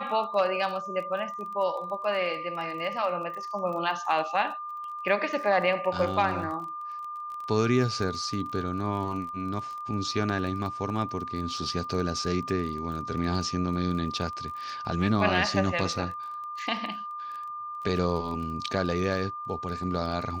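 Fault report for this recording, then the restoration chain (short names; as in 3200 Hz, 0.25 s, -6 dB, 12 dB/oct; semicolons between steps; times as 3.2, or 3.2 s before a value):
crackle 25/s -36 dBFS
tone 1200 Hz -34 dBFS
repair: de-click; notch 1200 Hz, Q 30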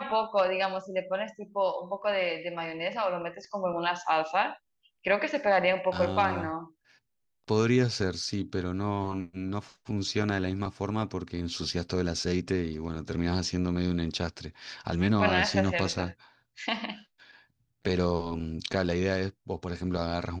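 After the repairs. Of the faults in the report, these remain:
none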